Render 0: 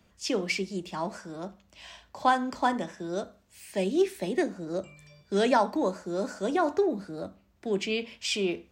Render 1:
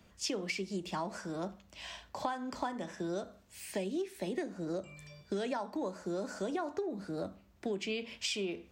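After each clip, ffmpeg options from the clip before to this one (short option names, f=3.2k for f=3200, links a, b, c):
-af "acompressor=threshold=-34dB:ratio=12,volume=1.5dB"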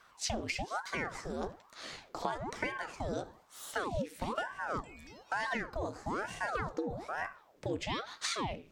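-af "aeval=exprs='val(0)*sin(2*PI*710*n/s+710*0.9/1.1*sin(2*PI*1.1*n/s))':c=same,volume=3dB"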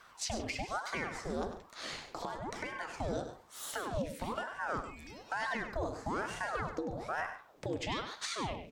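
-af "alimiter=level_in=5dB:limit=-24dB:level=0:latency=1:release=483,volume=-5dB,aecho=1:1:99|141:0.316|0.15,volume=3.5dB"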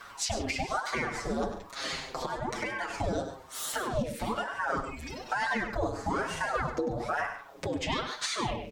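-filter_complex "[0:a]asplit=2[a][b];[b]acompressor=threshold=-46dB:ratio=6,volume=3dB[c];[a][c]amix=inputs=2:normalize=0,asplit=2[d][e];[e]adelay=6.6,afreqshift=-0.69[f];[d][f]amix=inputs=2:normalize=1,volume=6dB"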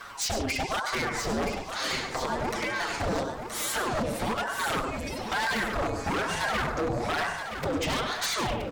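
-filter_complex "[0:a]aeval=exprs='0.0422*(abs(mod(val(0)/0.0422+3,4)-2)-1)':c=same,asplit=2[a][b];[b]aecho=0:1:973|1946|2919|3892:0.398|0.139|0.0488|0.0171[c];[a][c]amix=inputs=2:normalize=0,volume=4.5dB"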